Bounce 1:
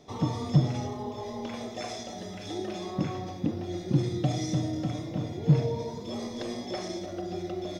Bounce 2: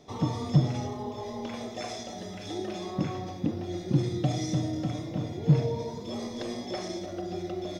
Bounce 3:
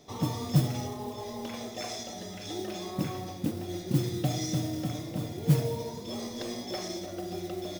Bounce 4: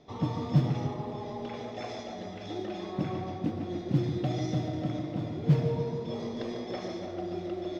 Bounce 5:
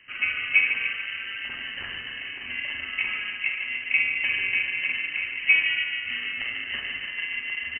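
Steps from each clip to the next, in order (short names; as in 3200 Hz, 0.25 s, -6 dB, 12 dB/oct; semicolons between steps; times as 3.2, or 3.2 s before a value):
nothing audible
high shelf 4400 Hz +8 dB; modulation noise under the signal 19 dB; gain -2 dB
air absorption 220 m; on a send: tape echo 0.145 s, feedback 79%, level -6 dB, low-pass 2700 Hz
doubler 48 ms -8 dB; ring modulator 600 Hz; inverted band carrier 3000 Hz; gain +6 dB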